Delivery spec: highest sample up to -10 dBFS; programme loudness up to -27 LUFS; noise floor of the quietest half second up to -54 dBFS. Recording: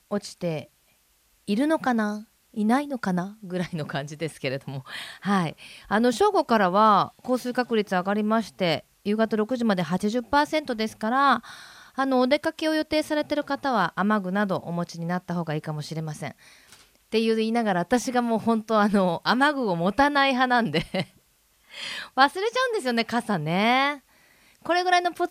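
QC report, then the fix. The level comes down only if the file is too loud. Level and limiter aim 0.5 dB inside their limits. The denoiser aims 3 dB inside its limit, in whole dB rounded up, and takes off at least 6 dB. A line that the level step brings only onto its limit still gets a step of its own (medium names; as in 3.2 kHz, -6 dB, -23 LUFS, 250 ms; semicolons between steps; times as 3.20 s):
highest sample -4.0 dBFS: fail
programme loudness -24.5 LUFS: fail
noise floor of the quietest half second -64 dBFS: pass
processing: trim -3 dB; peak limiter -10.5 dBFS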